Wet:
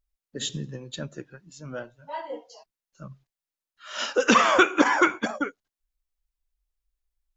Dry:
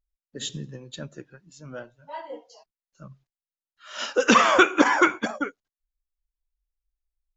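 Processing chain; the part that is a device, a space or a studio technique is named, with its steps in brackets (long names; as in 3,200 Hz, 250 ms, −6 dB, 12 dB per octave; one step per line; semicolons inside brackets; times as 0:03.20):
parallel compression (in parallel at −2 dB: downward compressor, threshold −30 dBFS, peak gain reduction 17.5 dB)
on the sum: level −2.5 dB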